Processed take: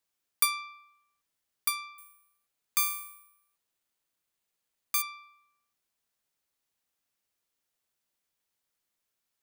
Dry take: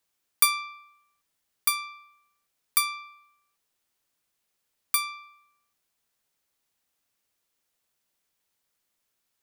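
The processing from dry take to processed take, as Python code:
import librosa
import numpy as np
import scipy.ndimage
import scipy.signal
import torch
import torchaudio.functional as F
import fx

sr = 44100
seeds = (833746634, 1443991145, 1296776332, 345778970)

y = fx.resample_bad(x, sr, factor=4, down='filtered', up='zero_stuff', at=(1.98, 5.02))
y = y * 10.0 ** (-5.0 / 20.0)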